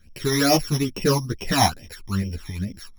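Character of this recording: a buzz of ramps at a fixed pitch in blocks of 8 samples; phasing stages 12, 2.3 Hz, lowest notch 460–1400 Hz; tremolo saw up 7.2 Hz, depth 35%; a shimmering, thickened sound

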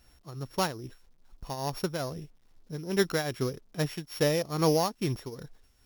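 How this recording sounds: a buzz of ramps at a fixed pitch in blocks of 8 samples; tremolo triangle 2.4 Hz, depth 80%; a quantiser's noise floor 12-bit, dither none

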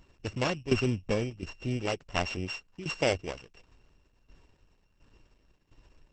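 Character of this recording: a buzz of ramps at a fixed pitch in blocks of 16 samples; tremolo saw down 1.4 Hz, depth 80%; Opus

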